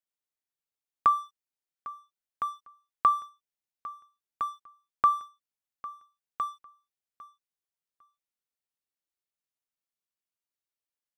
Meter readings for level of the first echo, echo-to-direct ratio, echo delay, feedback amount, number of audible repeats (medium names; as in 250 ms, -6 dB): -18.0 dB, -18.0 dB, 802 ms, 19%, 2